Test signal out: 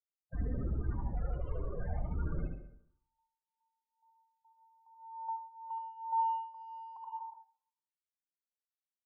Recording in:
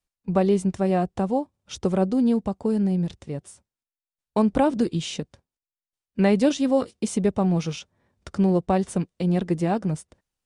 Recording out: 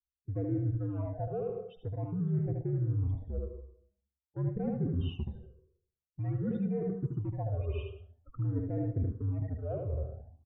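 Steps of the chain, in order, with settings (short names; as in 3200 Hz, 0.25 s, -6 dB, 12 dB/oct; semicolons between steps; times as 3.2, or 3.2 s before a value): gate -50 dBFS, range -15 dB; loudest bins only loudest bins 16; in parallel at -9 dB: hard clip -26.5 dBFS; on the sum: LPF 2400 Hz 24 dB/oct; tilt shelf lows +5 dB; echo 77 ms -5.5 dB; frequency shift -78 Hz; low shelf 360 Hz -6.5 dB; plate-style reverb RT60 0.69 s, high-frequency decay 0.55×, pre-delay 85 ms, DRR 11 dB; reverse; compressor 6:1, threshold -29 dBFS; reverse; phaser stages 8, 0.48 Hz, lowest notch 230–1000 Hz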